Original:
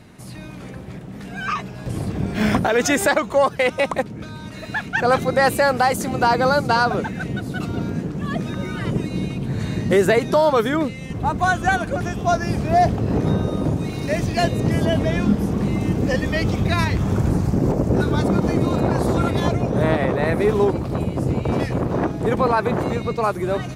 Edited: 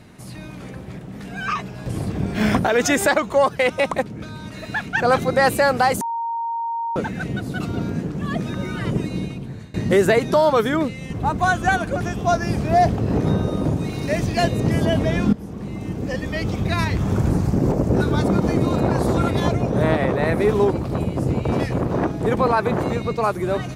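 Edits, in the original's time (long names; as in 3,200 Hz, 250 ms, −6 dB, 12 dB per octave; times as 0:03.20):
0:06.01–0:06.96: beep over 926 Hz −22 dBFS
0:09.07–0:09.74: fade out, to −23.5 dB
0:15.33–0:17.22: fade in, from −14 dB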